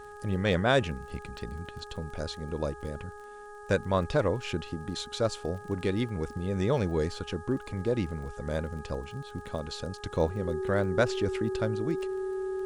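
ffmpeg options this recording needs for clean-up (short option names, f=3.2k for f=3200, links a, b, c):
-af "adeclick=t=4,bandreject=f=414.9:t=h:w=4,bandreject=f=829.8:t=h:w=4,bandreject=f=1.2447k:t=h:w=4,bandreject=f=1.6596k:t=h:w=4,bandreject=f=380:w=30,agate=range=-21dB:threshold=-37dB"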